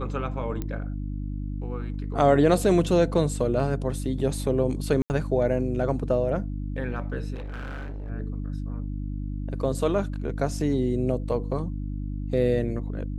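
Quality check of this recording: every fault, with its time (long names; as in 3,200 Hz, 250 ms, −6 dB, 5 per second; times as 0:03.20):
mains hum 50 Hz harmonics 6 −31 dBFS
0:00.62: click −18 dBFS
0:05.02–0:05.10: drop-out 79 ms
0:07.34–0:08.11: clipping −31.5 dBFS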